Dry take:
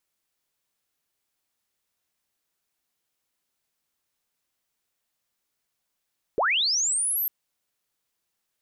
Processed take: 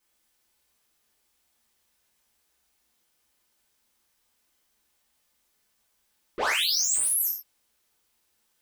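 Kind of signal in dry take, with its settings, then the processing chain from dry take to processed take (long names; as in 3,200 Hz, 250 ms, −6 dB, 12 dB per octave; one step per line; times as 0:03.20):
glide linear 350 Hz → 13,000 Hz −19.5 dBFS → −23.5 dBFS 0.90 s
parametric band 65 Hz +9 dB 0.26 octaves
soft clipping −32 dBFS
reverb whose tail is shaped and stops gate 160 ms falling, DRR −7 dB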